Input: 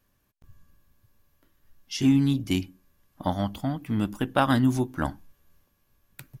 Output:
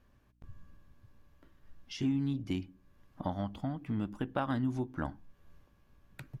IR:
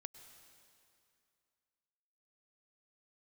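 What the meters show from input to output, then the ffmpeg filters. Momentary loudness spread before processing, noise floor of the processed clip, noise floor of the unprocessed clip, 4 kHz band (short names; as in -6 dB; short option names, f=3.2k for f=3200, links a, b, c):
11 LU, -67 dBFS, -71 dBFS, -13.0 dB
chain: -af "acompressor=threshold=-45dB:ratio=2,aeval=exprs='val(0)+0.0002*(sin(2*PI*60*n/s)+sin(2*PI*2*60*n/s)/2+sin(2*PI*3*60*n/s)/3+sin(2*PI*4*60*n/s)/4+sin(2*PI*5*60*n/s)/5)':c=same,aemphasis=mode=reproduction:type=75fm,volume=3dB"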